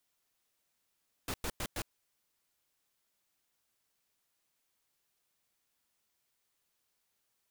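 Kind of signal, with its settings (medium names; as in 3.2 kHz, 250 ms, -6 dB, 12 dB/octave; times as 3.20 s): noise bursts pink, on 0.06 s, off 0.10 s, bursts 4, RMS -36.5 dBFS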